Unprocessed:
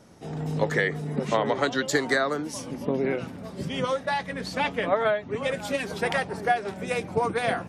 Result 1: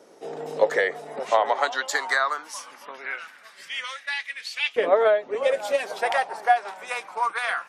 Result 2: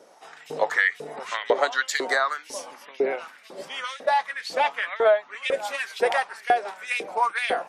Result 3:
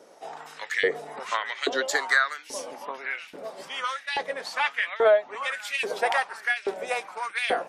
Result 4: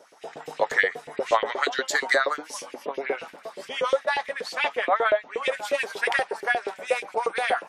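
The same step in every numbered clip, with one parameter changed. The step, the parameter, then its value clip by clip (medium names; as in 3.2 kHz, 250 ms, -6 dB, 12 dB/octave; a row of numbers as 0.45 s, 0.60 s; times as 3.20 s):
LFO high-pass, rate: 0.21 Hz, 2 Hz, 1.2 Hz, 8.4 Hz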